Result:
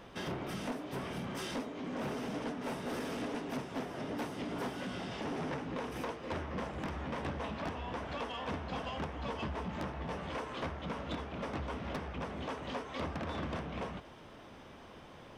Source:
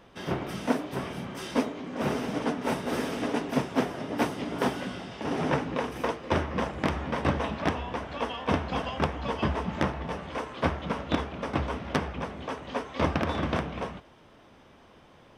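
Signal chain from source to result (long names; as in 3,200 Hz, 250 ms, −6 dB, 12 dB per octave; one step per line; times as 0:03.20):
downward compressor 3 to 1, threshold −38 dBFS, peak gain reduction 14 dB
soft clipping −34 dBFS, distortion −13 dB
level +2.5 dB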